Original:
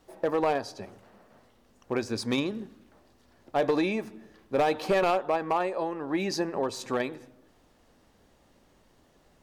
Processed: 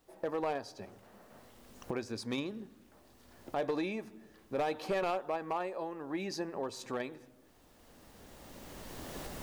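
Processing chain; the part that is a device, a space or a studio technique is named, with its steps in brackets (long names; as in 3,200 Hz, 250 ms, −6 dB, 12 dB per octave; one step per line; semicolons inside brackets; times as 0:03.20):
cheap recorder with automatic gain (white noise bed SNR 40 dB; camcorder AGC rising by 13 dB per second)
level −8.5 dB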